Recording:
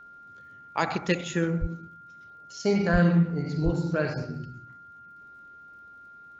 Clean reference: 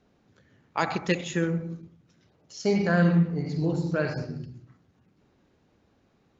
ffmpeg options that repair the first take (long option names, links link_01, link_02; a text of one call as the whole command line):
ffmpeg -i in.wav -filter_complex "[0:a]adeclick=threshold=4,bandreject=frequency=1400:width=30,asplit=3[link_01][link_02][link_03];[link_01]afade=type=out:start_time=1.6:duration=0.02[link_04];[link_02]highpass=frequency=140:width=0.5412,highpass=frequency=140:width=1.3066,afade=type=in:start_time=1.6:duration=0.02,afade=type=out:start_time=1.72:duration=0.02[link_05];[link_03]afade=type=in:start_time=1.72:duration=0.02[link_06];[link_04][link_05][link_06]amix=inputs=3:normalize=0,asplit=3[link_07][link_08][link_09];[link_07]afade=type=out:start_time=2.92:duration=0.02[link_10];[link_08]highpass=frequency=140:width=0.5412,highpass=frequency=140:width=1.3066,afade=type=in:start_time=2.92:duration=0.02,afade=type=out:start_time=3.04:duration=0.02[link_11];[link_09]afade=type=in:start_time=3.04:duration=0.02[link_12];[link_10][link_11][link_12]amix=inputs=3:normalize=0,asplit=3[link_13][link_14][link_15];[link_13]afade=type=out:start_time=3.64:duration=0.02[link_16];[link_14]highpass=frequency=140:width=0.5412,highpass=frequency=140:width=1.3066,afade=type=in:start_time=3.64:duration=0.02,afade=type=out:start_time=3.76:duration=0.02[link_17];[link_15]afade=type=in:start_time=3.76:duration=0.02[link_18];[link_16][link_17][link_18]amix=inputs=3:normalize=0" out.wav